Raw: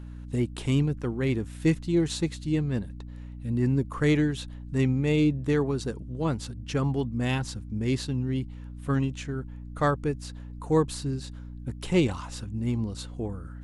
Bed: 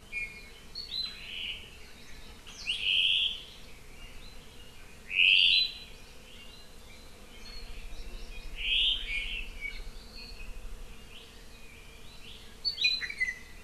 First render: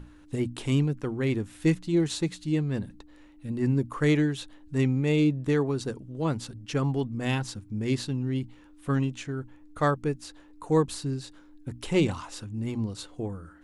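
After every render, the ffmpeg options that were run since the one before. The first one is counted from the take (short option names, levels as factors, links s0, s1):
-af "bandreject=f=60:t=h:w=6,bandreject=f=120:t=h:w=6,bandreject=f=180:t=h:w=6,bandreject=f=240:t=h:w=6"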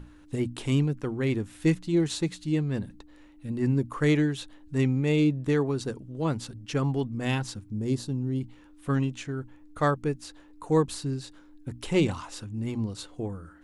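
-filter_complex "[0:a]asettb=1/sr,asplit=3[s0][s1][s2];[s0]atrim=end=7.704[s3];[s1]atrim=start=7.7:end=8.41,asetpts=PTS-STARTPTS,afade=t=in:d=0.004:c=qsin,afade=t=out:st=0.706:d=0.004:c=qsin,equalizer=f=2200:w=0.76:g=-12[s4];[s2]atrim=start=8.406[s5];[s3][s4]acrossfade=d=0.004:c1=hsin:c2=qsin[s6];[s6][s5]acrossfade=d=0.004:c1=qsin:c2=hsin"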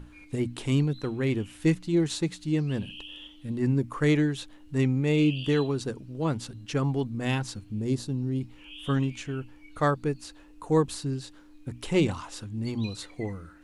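-filter_complex "[1:a]volume=0.133[s0];[0:a][s0]amix=inputs=2:normalize=0"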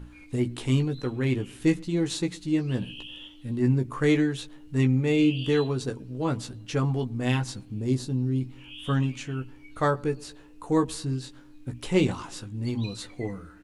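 -filter_complex "[0:a]asplit=2[s0][s1];[s1]adelay=16,volume=0.501[s2];[s0][s2]amix=inputs=2:normalize=0,asplit=2[s3][s4];[s4]adelay=116,lowpass=f=1000:p=1,volume=0.0708,asplit=2[s5][s6];[s6]adelay=116,lowpass=f=1000:p=1,volume=0.54,asplit=2[s7][s8];[s8]adelay=116,lowpass=f=1000:p=1,volume=0.54,asplit=2[s9][s10];[s10]adelay=116,lowpass=f=1000:p=1,volume=0.54[s11];[s3][s5][s7][s9][s11]amix=inputs=5:normalize=0"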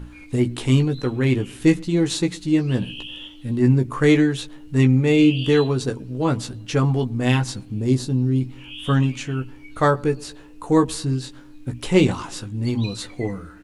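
-af "volume=2.11"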